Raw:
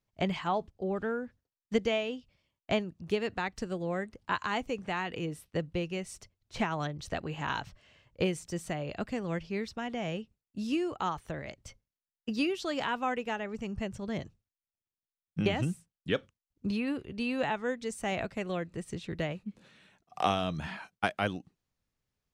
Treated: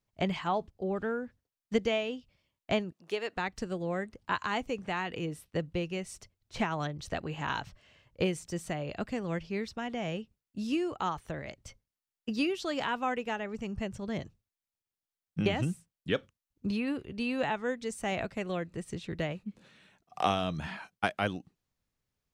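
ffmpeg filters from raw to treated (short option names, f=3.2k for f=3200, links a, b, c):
-filter_complex "[0:a]asettb=1/sr,asplit=3[a][b][c];[a]atrim=end=2.924[d];[b]atrim=start=2.92:end=3.37,asetpts=PTS-STARTPTS,afade=t=in:d=0.004:c=qsin,afade=t=out:st=0.446:d=0.004:c=qsin,highpass=430[e];[c]atrim=start=3.366[f];[d][e]acrossfade=d=0.004:c1=hsin:c2=qsin[g];[g][f]acrossfade=d=0.004:c1=qsin:c2=hsin"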